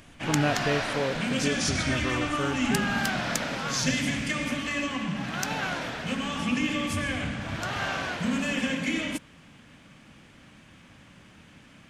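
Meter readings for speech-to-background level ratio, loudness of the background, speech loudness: -2.5 dB, -28.5 LUFS, -31.0 LUFS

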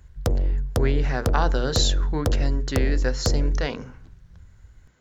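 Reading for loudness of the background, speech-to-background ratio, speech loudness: -26.0 LUFS, -2.0 dB, -28.0 LUFS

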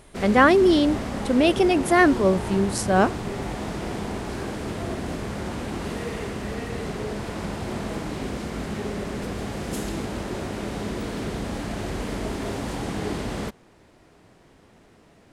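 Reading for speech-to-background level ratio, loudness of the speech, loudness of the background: 10.5 dB, -20.0 LUFS, -30.5 LUFS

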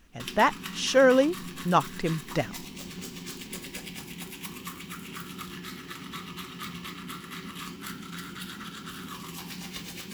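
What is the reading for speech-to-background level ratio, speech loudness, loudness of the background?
14.0 dB, -25.0 LUFS, -39.0 LUFS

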